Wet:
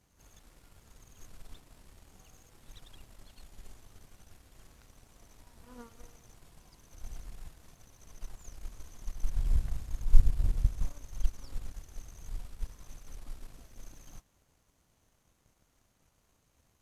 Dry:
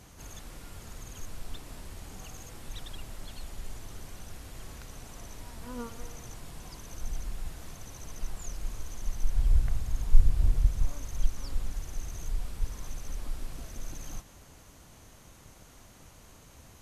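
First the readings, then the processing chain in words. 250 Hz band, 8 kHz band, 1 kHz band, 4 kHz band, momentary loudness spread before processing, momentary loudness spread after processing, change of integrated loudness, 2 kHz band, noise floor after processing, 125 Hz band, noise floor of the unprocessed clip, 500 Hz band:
-7.0 dB, -9.5 dB, -9.5 dB, -9.5 dB, 24 LU, 24 LU, 0.0 dB, -9.5 dB, -72 dBFS, -4.0 dB, -54 dBFS, -9.0 dB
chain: power-law waveshaper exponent 1.4; reverse echo 90 ms -15 dB

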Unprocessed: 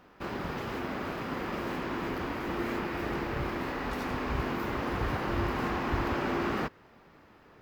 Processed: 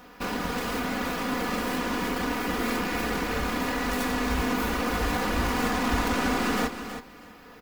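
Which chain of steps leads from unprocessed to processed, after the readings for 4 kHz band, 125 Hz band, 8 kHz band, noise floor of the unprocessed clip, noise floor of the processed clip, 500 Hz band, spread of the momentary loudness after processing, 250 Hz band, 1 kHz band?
+10.0 dB, +1.0 dB, +17.0 dB, -58 dBFS, -49 dBFS, +3.5 dB, 4 LU, +5.5 dB, +5.0 dB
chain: tracing distortion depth 0.11 ms; treble shelf 4.7 kHz +11.5 dB; comb 4.1 ms, depth 77%; in parallel at -1.5 dB: compression, threshold -36 dBFS, peak gain reduction 12.5 dB; on the sum: feedback delay 322 ms, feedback 16%, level -10 dB

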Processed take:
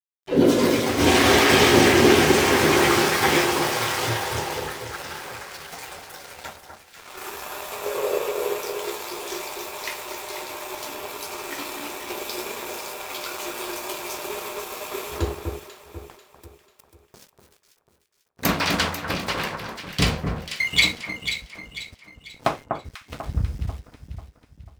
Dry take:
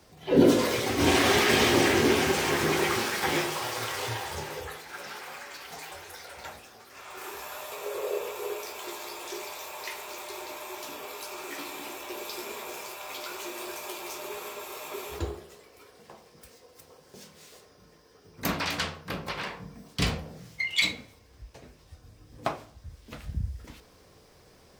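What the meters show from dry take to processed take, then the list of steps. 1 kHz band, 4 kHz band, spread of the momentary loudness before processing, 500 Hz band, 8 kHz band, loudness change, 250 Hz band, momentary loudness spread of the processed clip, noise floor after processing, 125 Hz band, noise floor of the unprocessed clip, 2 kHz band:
+7.0 dB, +6.5 dB, 20 LU, +6.5 dB, +6.5 dB, +6.5 dB, +6.0 dB, 21 LU, -61 dBFS, +7.0 dB, -57 dBFS, +6.5 dB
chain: level rider gain up to 8.5 dB; crossover distortion -37 dBFS; on a send: echo whose repeats swap between lows and highs 246 ms, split 1.6 kHz, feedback 63%, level -5 dB

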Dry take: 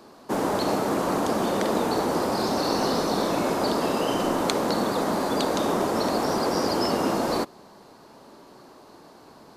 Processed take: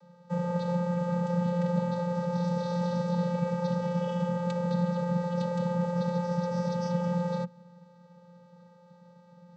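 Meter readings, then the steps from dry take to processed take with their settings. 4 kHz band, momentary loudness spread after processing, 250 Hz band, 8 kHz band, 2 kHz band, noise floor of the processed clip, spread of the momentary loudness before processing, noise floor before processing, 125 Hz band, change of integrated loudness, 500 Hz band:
-17.5 dB, 2 LU, -3.5 dB, under -15 dB, -11.0 dB, -57 dBFS, 1 LU, -50 dBFS, +7.0 dB, -5.0 dB, -6.5 dB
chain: vocoder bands 16, square 175 Hz; trim -3.5 dB

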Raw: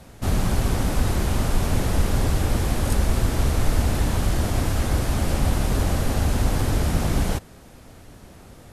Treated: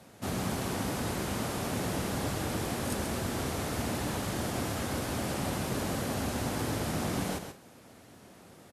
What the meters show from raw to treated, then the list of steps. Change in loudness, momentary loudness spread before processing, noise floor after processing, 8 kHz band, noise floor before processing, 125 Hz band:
-9.5 dB, 1 LU, -55 dBFS, -5.5 dB, -46 dBFS, -13.0 dB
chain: high-pass 150 Hz 12 dB/octave; on a send: multi-tap echo 133/178 ms -8/-19.5 dB; on the sum: trim -6 dB

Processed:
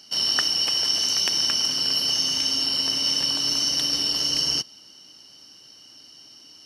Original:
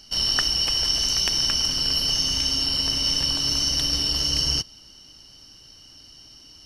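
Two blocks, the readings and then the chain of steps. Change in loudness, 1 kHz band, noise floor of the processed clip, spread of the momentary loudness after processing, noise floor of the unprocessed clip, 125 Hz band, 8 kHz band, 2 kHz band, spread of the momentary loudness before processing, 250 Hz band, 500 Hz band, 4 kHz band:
0.0 dB, 0.0 dB, -49 dBFS, 1 LU, -49 dBFS, -10.0 dB, 0.0 dB, 0.0 dB, 1 LU, -1.5 dB, 0.0 dB, 0.0 dB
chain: high-pass 200 Hz 12 dB/octave

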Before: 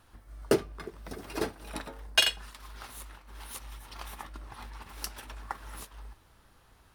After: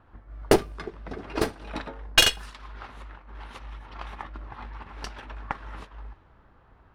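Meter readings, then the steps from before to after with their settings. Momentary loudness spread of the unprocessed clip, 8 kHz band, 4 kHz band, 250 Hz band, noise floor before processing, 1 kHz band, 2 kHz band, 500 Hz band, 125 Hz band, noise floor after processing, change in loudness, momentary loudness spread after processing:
20 LU, +6.5 dB, +5.0 dB, +5.5 dB, -62 dBFS, +7.0 dB, +5.5 dB, +5.5 dB, +6.5 dB, -58 dBFS, +8.0 dB, 22 LU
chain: Chebyshev shaper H 6 -15 dB, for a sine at -8 dBFS; level-controlled noise filter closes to 1.5 kHz, open at -26 dBFS; trim +5 dB

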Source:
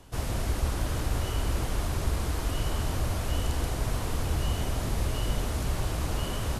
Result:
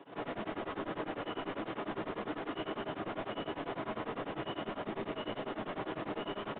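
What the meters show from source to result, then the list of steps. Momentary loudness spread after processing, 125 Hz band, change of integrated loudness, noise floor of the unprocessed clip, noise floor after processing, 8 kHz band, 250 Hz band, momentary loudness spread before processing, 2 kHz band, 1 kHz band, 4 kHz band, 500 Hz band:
1 LU, -20.5 dB, -8.5 dB, -33 dBFS, -52 dBFS, under -40 dB, -3.5 dB, 1 LU, -4.0 dB, -2.5 dB, -8.5 dB, -1.5 dB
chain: high-pass 210 Hz 24 dB/octave; peak limiter -29.5 dBFS, peak gain reduction 6.5 dB; saturation -38.5 dBFS, distortion -12 dB; distance through air 290 m; simulated room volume 47 m³, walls mixed, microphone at 0.65 m; resampled via 8 kHz; tremolo of two beating tones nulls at 10 Hz; trim +4.5 dB

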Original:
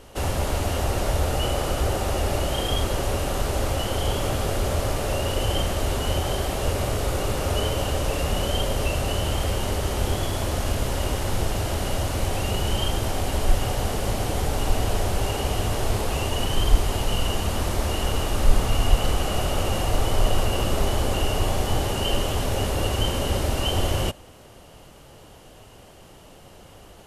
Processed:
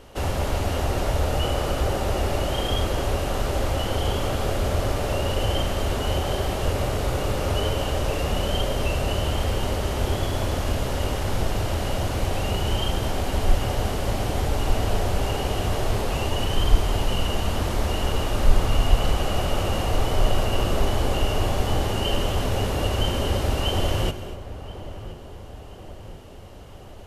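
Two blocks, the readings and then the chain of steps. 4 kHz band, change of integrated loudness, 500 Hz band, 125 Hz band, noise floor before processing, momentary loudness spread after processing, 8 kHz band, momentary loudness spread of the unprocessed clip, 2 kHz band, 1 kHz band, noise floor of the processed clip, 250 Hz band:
-0.5 dB, 0.0 dB, +0.5 dB, +0.5 dB, -47 dBFS, 5 LU, -4.0 dB, 2 LU, 0.0 dB, +0.5 dB, -40 dBFS, +0.5 dB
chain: peaking EQ 9.8 kHz -5.5 dB 1.3 oct; filtered feedback delay 1026 ms, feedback 61%, low-pass 1.6 kHz, level -14.5 dB; gated-style reverb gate 270 ms rising, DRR 12 dB

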